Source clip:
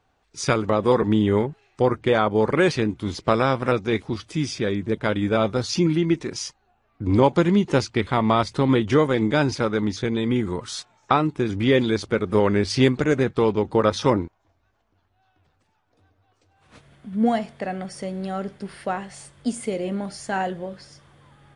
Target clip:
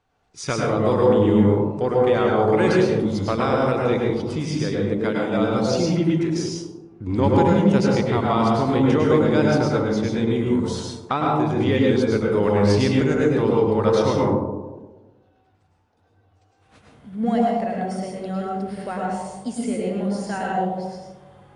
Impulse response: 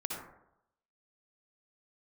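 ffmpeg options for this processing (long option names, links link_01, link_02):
-filter_complex "[0:a]asettb=1/sr,asplit=3[link_01][link_02][link_03];[link_01]atrim=end=4.764[link_04];[link_02]atrim=start=4.76:end=5.38,asetpts=PTS-STARTPTS,afade=type=in:duration=0.004:curve=qsin,afade=type=out:start_time=0.616:duration=0.004:curve=qsin,highpass=frequency=140:width=0.5412,highpass=frequency=140:width=1.3066[link_05];[link_03]atrim=start=5.376[link_06];[link_04][link_05]acrossfade=duration=0.004:curve1=hsin:curve2=qsin[link_07];[link_07][link_06]acrossfade=duration=0.004:curve1=qsin:curve2=hsin,asplit=2[link_08][link_09];[link_09]asoftclip=type=tanh:threshold=-12dB,volume=-7.5dB[link_10];[link_08][link_10]amix=inputs=2:normalize=0[link_11];[1:a]atrim=start_sample=2205,asetrate=25137,aresample=44100[link_12];[link_11][link_12]afir=irnorm=-1:irlink=0,volume=-8dB"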